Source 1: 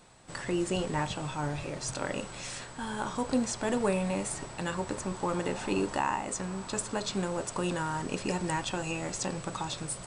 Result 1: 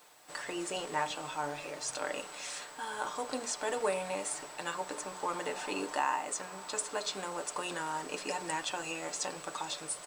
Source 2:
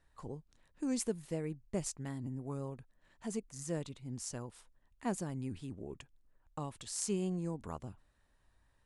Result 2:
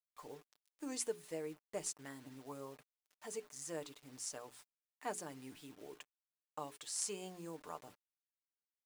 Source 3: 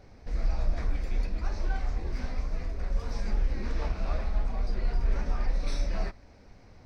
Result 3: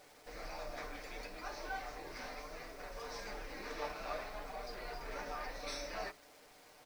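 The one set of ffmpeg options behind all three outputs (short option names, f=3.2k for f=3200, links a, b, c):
-af "bass=f=250:g=-14,treble=f=4k:g=0,bandreject=f=60:t=h:w=6,bandreject=f=120:t=h:w=6,bandreject=f=180:t=h:w=6,bandreject=f=240:t=h:w=6,bandreject=f=300:t=h:w=6,bandreject=f=360:t=h:w=6,bandreject=f=420:t=h:w=6,acrusher=bits=9:mix=0:aa=0.000001,lowshelf=f=170:g=-10.5,aecho=1:1:6.7:0.45,volume=-1.5dB"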